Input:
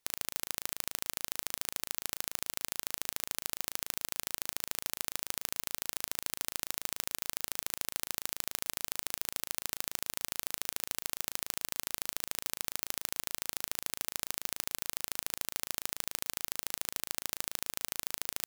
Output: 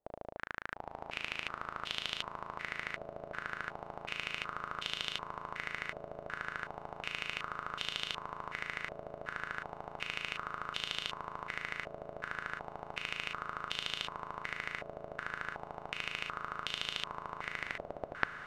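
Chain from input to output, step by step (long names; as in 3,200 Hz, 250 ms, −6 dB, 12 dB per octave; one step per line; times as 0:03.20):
turntable brake at the end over 0.88 s
feedback delay with all-pass diffusion 906 ms, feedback 63%, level −5.5 dB
low-pass on a step sequencer 2.7 Hz 640–3,200 Hz
level −1 dB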